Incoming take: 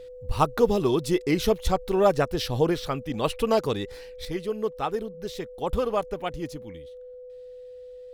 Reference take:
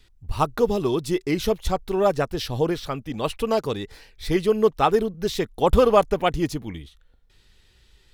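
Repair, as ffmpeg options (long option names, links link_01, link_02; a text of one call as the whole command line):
ffmpeg -i in.wav -af "bandreject=frequency=500:width=30,asetnsamples=nb_out_samples=441:pad=0,asendcmd='4.25 volume volume 9.5dB',volume=0dB" out.wav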